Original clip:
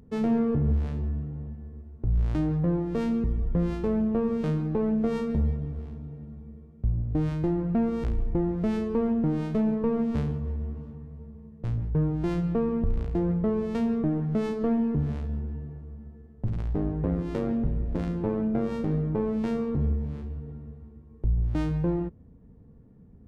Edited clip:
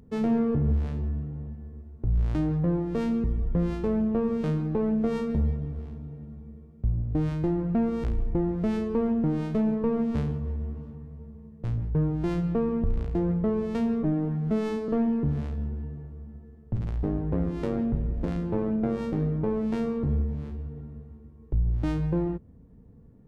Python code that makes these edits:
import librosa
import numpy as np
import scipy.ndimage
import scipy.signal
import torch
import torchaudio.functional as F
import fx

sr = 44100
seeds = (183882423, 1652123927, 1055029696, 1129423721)

y = fx.edit(x, sr, fx.stretch_span(start_s=14.03, length_s=0.57, factor=1.5), tone=tone)